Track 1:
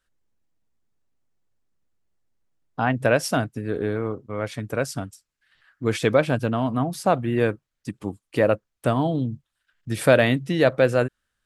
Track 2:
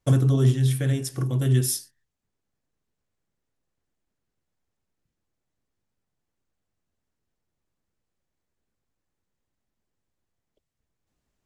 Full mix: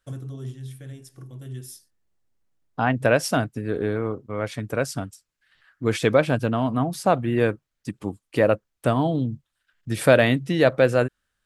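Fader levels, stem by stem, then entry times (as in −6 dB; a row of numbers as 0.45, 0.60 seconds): +0.5, −15.5 decibels; 0.00, 0.00 seconds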